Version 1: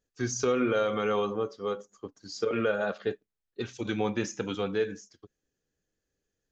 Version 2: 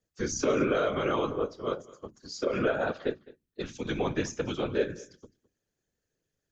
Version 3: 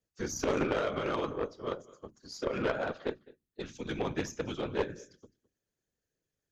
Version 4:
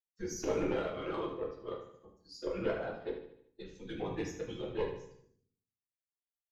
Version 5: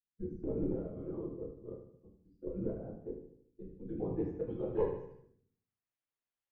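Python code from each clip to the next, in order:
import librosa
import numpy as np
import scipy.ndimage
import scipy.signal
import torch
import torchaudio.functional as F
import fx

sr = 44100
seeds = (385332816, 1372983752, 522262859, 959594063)

y1 = fx.hum_notches(x, sr, base_hz=60, count=5)
y1 = fx.whisperise(y1, sr, seeds[0])
y1 = y1 + 10.0 ** (-21.0 / 20.0) * np.pad(y1, (int(210 * sr / 1000.0), 0))[:len(y1)]
y2 = fx.cheby_harmonics(y1, sr, harmonics=(2, 8), levels_db=(-6, -22), full_scale_db=-13.5)
y2 = F.gain(torch.from_numpy(y2), -4.5).numpy()
y3 = fx.bin_expand(y2, sr, power=1.5)
y3 = fx.echo_feedback(y3, sr, ms=75, feedback_pct=48, wet_db=-10.0)
y3 = fx.room_shoebox(y3, sr, seeds[1], volume_m3=37.0, walls='mixed', distance_m=0.74)
y3 = F.gain(torch.from_numpy(y3), -7.5).numpy()
y4 = fx.filter_sweep_lowpass(y3, sr, from_hz=280.0, to_hz=2600.0, start_s=3.54, end_s=5.97, q=0.78)
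y4 = F.gain(torch.from_numpy(y4), 3.0).numpy()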